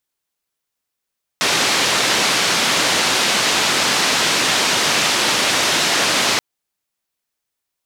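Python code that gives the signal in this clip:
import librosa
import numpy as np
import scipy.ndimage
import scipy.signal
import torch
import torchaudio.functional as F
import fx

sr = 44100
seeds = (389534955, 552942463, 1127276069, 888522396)

y = fx.band_noise(sr, seeds[0], length_s=4.98, low_hz=160.0, high_hz=5100.0, level_db=-17.0)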